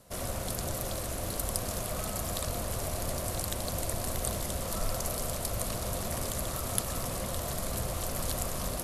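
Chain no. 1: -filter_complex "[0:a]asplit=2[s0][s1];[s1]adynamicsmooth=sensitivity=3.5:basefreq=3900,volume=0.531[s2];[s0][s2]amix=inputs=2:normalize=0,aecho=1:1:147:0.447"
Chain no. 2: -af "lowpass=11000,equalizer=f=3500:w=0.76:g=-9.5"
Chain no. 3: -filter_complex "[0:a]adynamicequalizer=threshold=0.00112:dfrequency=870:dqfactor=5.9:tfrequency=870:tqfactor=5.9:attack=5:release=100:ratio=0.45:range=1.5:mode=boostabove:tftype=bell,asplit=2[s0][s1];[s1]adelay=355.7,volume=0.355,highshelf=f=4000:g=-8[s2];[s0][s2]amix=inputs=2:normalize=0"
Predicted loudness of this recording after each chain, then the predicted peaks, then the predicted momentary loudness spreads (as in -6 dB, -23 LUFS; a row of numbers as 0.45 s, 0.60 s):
-31.0 LUFS, -36.0 LUFS, -33.0 LUFS; -5.5 dBFS, -11.5 dBFS, -6.0 dBFS; 1 LU, 1 LU, 2 LU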